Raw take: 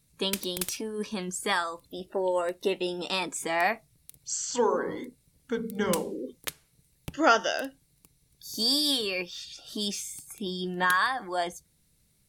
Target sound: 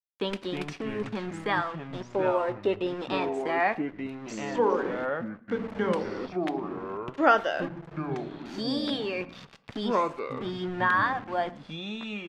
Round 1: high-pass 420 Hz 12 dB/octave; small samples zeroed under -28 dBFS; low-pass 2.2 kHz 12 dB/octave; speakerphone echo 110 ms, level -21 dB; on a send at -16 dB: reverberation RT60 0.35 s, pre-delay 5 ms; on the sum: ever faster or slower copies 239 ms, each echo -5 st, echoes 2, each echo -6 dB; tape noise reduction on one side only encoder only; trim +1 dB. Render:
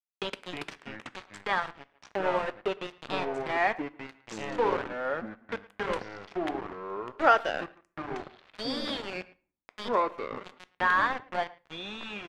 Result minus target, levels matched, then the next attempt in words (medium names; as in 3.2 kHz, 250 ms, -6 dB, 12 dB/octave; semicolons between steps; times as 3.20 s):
125 Hz band -7.0 dB; small samples zeroed: distortion +10 dB
high-pass 150 Hz 12 dB/octave; small samples zeroed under -36.5 dBFS; low-pass 2.2 kHz 12 dB/octave; speakerphone echo 110 ms, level -21 dB; on a send at -16 dB: reverberation RT60 0.35 s, pre-delay 5 ms; on the sum: ever faster or slower copies 239 ms, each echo -5 st, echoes 2, each echo -6 dB; tape noise reduction on one side only encoder only; trim +1 dB